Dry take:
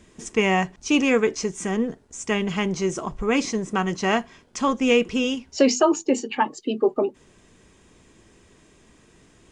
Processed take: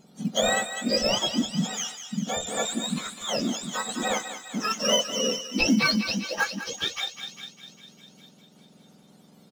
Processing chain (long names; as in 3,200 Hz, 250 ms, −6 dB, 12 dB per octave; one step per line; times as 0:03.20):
frequency axis turned over on the octave scale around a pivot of 1,200 Hz
downsampling to 32,000 Hz
in parallel at −11 dB: sample-and-hold swept by an LFO 14×, swing 60% 0.38 Hz
on the sum: feedback echo with a high-pass in the loop 201 ms, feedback 69%, high-pass 900 Hz, level −9 dB
amplitude modulation by smooth noise, depth 55%